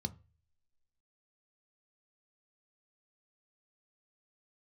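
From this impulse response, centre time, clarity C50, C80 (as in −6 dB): 4 ms, 22.0 dB, 27.0 dB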